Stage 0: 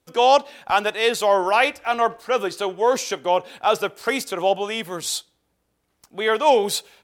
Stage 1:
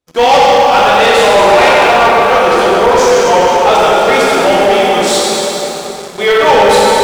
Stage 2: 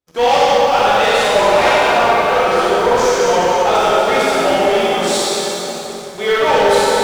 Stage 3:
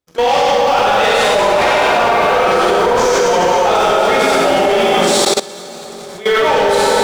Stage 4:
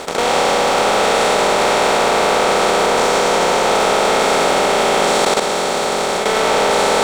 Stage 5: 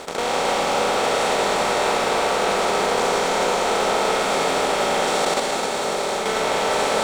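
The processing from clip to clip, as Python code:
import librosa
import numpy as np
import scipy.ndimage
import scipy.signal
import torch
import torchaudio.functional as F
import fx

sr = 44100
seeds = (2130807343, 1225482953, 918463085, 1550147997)

y1 = scipy.signal.sosfilt(scipy.signal.butter(2, 9000.0, 'lowpass', fs=sr, output='sos'), x)
y1 = fx.rev_plate(y1, sr, seeds[0], rt60_s=4.3, hf_ratio=0.65, predelay_ms=0, drr_db=-8.0)
y1 = fx.leveller(y1, sr, passes=3)
y1 = F.gain(torch.from_numpy(y1), -3.5).numpy()
y2 = fx.rev_gated(y1, sr, seeds[1], gate_ms=90, shape='rising', drr_db=1.5)
y2 = F.gain(torch.from_numpy(y2), -7.5).numpy()
y3 = fx.level_steps(y2, sr, step_db=18)
y3 = F.gain(torch.from_numpy(y3), 6.0).numpy()
y4 = fx.bin_compress(y3, sr, power=0.2)
y4 = F.gain(torch.from_numpy(y4), -10.0).numpy()
y5 = y4 + 10.0 ** (-5.0 / 20.0) * np.pad(y4, (int(261 * sr / 1000.0), 0))[:len(y4)]
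y5 = F.gain(torch.from_numpy(y5), -7.0).numpy()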